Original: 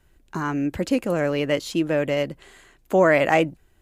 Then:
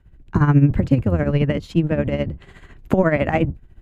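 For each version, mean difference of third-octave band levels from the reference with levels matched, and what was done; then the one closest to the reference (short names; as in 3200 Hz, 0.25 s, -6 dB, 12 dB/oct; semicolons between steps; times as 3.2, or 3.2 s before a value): 7.5 dB: octaver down 1 oct, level -1 dB; recorder AGC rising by 17 dB/s; tone controls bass +10 dB, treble -13 dB; tremolo 14 Hz, depth 66%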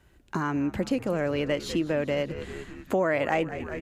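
5.5 dB: HPF 47 Hz; high shelf 6900 Hz -6.5 dB; on a send: frequency-shifting echo 0.197 s, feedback 62%, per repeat -79 Hz, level -16.5 dB; on the sum: compressor 2.5:1, threshold -30 dBFS, peak gain reduction 12 dB; gain +3 dB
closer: second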